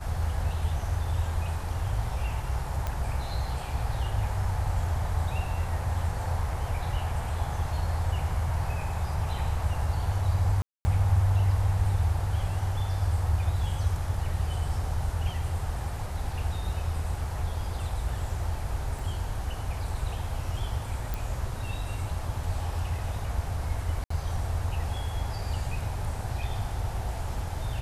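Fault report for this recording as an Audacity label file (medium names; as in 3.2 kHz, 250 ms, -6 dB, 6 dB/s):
2.870000	2.870000	pop -17 dBFS
10.620000	10.850000	dropout 230 ms
18.990000	18.990000	dropout 3.7 ms
21.140000	21.140000	pop
24.040000	24.100000	dropout 64 ms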